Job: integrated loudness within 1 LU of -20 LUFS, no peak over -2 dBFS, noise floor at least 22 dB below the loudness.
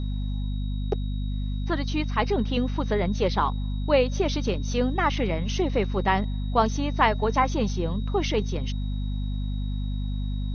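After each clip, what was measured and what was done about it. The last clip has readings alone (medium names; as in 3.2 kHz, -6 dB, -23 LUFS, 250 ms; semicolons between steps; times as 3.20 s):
hum 50 Hz; highest harmonic 250 Hz; hum level -25 dBFS; steady tone 3.8 kHz; tone level -48 dBFS; loudness -26.5 LUFS; peak level -5.5 dBFS; loudness target -20.0 LUFS
-> hum notches 50/100/150/200/250 Hz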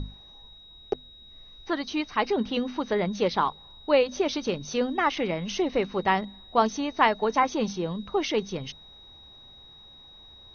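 hum not found; steady tone 3.8 kHz; tone level -48 dBFS
-> band-stop 3.8 kHz, Q 30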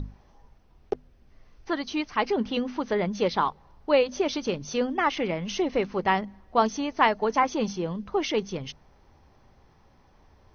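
steady tone not found; loudness -27.0 LUFS; peak level -6.0 dBFS; loudness target -20.0 LUFS
-> trim +7 dB; peak limiter -2 dBFS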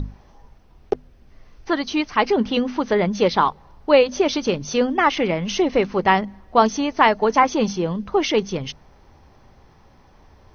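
loudness -20.0 LUFS; peak level -2.0 dBFS; noise floor -52 dBFS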